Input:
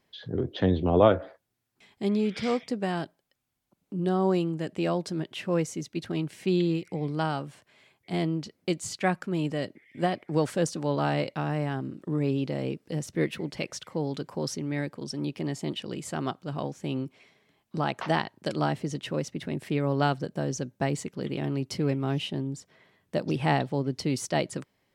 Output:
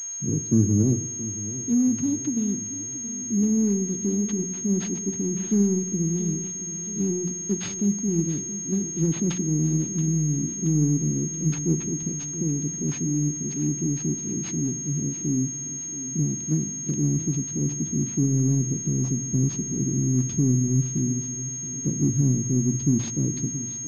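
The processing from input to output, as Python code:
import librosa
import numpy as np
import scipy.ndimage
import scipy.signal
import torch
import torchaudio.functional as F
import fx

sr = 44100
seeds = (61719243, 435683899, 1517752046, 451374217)

p1 = fx.speed_glide(x, sr, from_pct=121, to_pct=88)
p2 = scipy.signal.sosfilt(scipy.signal.cheby2(4, 80, [1100.0, 2200.0], 'bandstop', fs=sr, output='sos'), p1)
p3 = 10.0 ** (-28.5 / 20.0) * np.tanh(p2 / 10.0 ** (-28.5 / 20.0))
p4 = p2 + (p3 * librosa.db_to_amplitude(-11.0))
p5 = fx.rev_spring(p4, sr, rt60_s=1.2, pass_ms=(39, 54), chirp_ms=50, drr_db=13.5)
p6 = fx.dmg_buzz(p5, sr, base_hz=400.0, harmonics=8, level_db=-65.0, tilt_db=0, odd_only=False)
p7 = fx.peak_eq(p6, sr, hz=580.0, db=-13.5, octaves=0.84)
p8 = fx.hum_notches(p7, sr, base_hz=60, count=3)
p9 = p8 + fx.echo_feedback(p8, sr, ms=676, feedback_pct=59, wet_db=-14.0, dry=0)
p10 = fx.pwm(p9, sr, carrier_hz=6500.0)
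y = p10 * librosa.db_to_amplitude(7.0)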